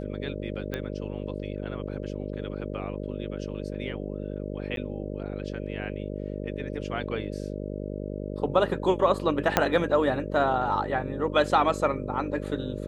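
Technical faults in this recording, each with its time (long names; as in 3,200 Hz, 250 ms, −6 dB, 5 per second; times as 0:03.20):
mains buzz 50 Hz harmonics 12 −34 dBFS
0:00.74: click −18 dBFS
0:04.76–0:04.77: drop-out 12 ms
0:09.57: click −4 dBFS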